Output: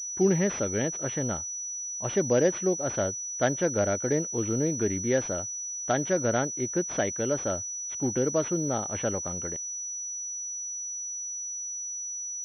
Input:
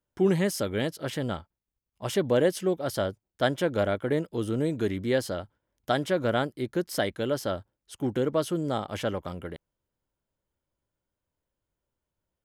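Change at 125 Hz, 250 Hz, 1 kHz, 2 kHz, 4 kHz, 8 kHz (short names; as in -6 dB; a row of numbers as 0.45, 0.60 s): 0.0, 0.0, -1.0, -1.0, -7.5, +18.0 dB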